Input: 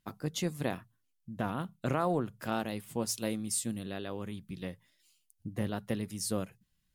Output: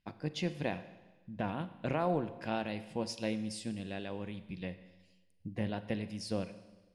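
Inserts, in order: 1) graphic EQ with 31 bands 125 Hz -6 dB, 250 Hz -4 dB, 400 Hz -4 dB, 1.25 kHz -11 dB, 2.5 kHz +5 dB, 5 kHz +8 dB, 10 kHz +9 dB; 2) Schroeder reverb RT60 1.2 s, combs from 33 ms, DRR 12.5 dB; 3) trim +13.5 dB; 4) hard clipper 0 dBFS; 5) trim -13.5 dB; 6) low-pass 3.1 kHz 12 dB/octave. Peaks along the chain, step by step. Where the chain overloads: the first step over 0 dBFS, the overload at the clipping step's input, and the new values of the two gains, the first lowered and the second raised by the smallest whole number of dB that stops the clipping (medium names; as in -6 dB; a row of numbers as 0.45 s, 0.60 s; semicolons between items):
-16.5 dBFS, -16.5 dBFS, -3.0 dBFS, -3.0 dBFS, -16.5 dBFS, -19.0 dBFS; nothing clips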